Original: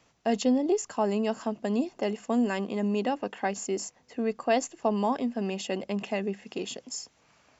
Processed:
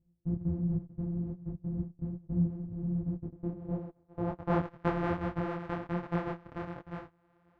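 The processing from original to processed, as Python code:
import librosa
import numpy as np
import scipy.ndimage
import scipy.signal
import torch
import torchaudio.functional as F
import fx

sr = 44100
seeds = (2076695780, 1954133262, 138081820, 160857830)

y = np.r_[np.sort(x[:len(x) // 256 * 256].reshape(-1, 256), axis=1).ravel(), x[len(x) // 256 * 256:]]
y = fx.filter_sweep_lowpass(y, sr, from_hz=190.0, to_hz=1500.0, start_s=3.08, end_s=4.74, q=1.0)
y = fx.detune_double(y, sr, cents=45)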